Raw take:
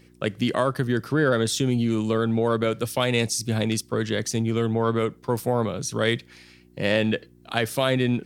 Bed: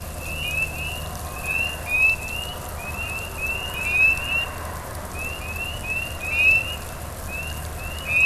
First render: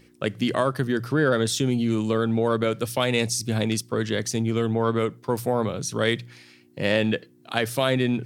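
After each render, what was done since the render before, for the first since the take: de-hum 60 Hz, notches 3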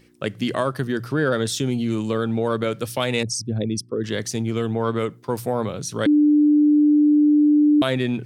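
3.23–4.04 s: resonances exaggerated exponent 2; 6.06–7.82 s: bleep 297 Hz -12 dBFS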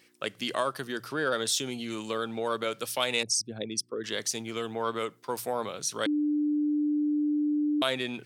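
high-pass 1.1 kHz 6 dB/octave; dynamic bell 1.8 kHz, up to -4 dB, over -43 dBFS, Q 2.2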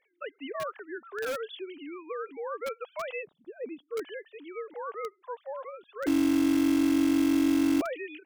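formants replaced by sine waves; in parallel at -5 dB: integer overflow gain 29.5 dB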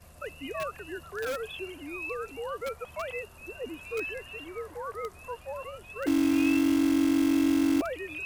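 add bed -20 dB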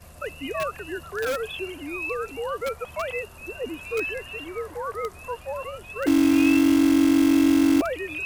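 trim +6 dB

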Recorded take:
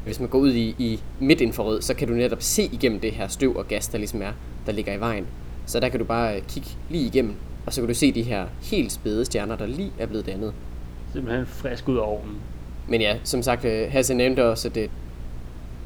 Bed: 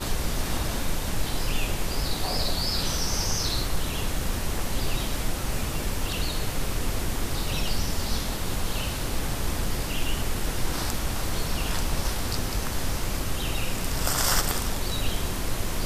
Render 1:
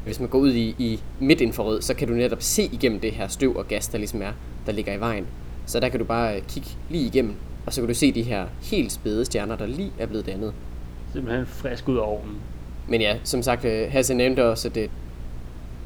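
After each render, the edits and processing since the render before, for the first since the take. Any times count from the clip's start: no audible change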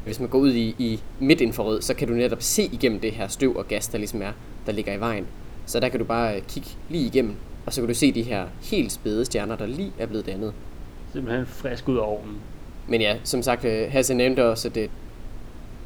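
de-hum 60 Hz, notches 3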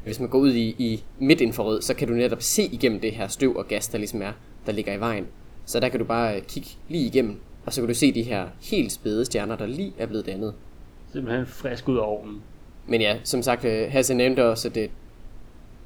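noise print and reduce 7 dB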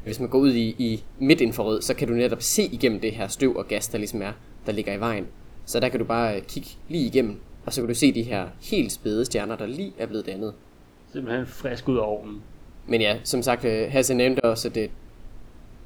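7.82–8.33 s: three bands expanded up and down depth 40%; 9.40–11.44 s: bass shelf 100 Hz -11 dB; 14.03–14.44 s: slow attack 454 ms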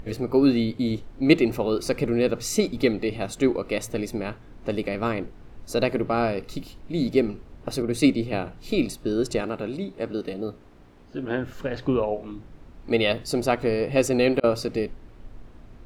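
treble shelf 5.6 kHz -11 dB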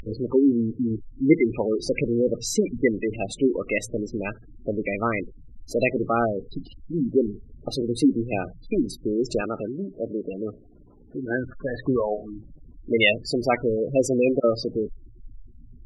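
spectral gate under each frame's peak -15 dB strong; peaking EQ 2.3 kHz +13 dB 1.2 oct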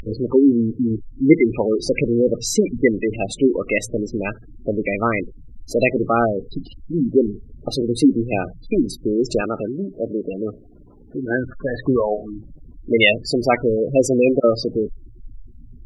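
trim +5 dB; peak limiter -1 dBFS, peak gain reduction 1 dB

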